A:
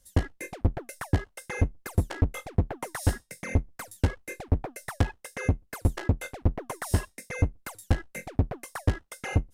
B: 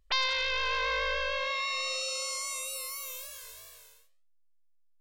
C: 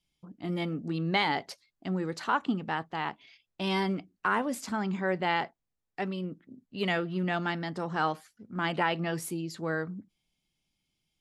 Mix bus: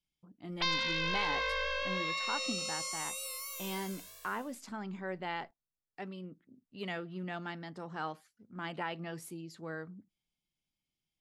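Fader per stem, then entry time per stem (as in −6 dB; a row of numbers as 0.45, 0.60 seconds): muted, −3.5 dB, −10.0 dB; muted, 0.50 s, 0.00 s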